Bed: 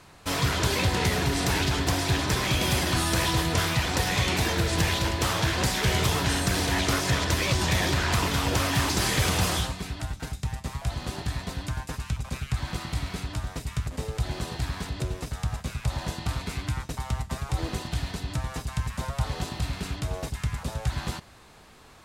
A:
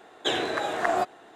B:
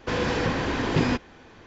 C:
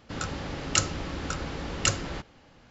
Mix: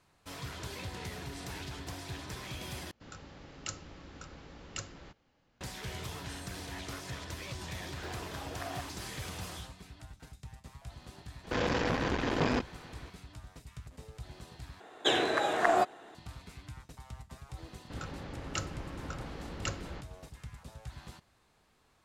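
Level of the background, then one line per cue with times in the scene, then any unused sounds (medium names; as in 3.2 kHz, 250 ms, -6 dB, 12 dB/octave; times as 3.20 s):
bed -17 dB
2.91 s: replace with C -16 dB
7.77 s: add A -17 dB + median filter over 15 samples
11.44 s: add B -2 dB + transformer saturation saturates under 890 Hz
14.80 s: replace with A -1 dB
17.80 s: add C -8 dB + treble shelf 3.3 kHz -9.5 dB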